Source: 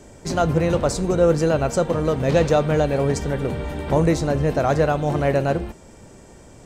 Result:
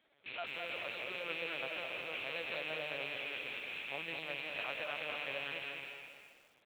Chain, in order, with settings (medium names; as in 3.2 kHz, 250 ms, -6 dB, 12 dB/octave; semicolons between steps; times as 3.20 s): rattle on loud lows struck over -33 dBFS, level -15 dBFS; algorithmic reverb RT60 1.8 s, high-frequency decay 0.75×, pre-delay 120 ms, DRR 4.5 dB; flange 0.72 Hz, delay 6 ms, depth 4.1 ms, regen +2%; 4.19–5.32 s: high-pass 150 Hz 12 dB/octave; LPC vocoder at 8 kHz pitch kept; differentiator; delay 304 ms -17 dB; bit-crushed delay 209 ms, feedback 35%, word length 10-bit, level -5.5 dB; trim -2.5 dB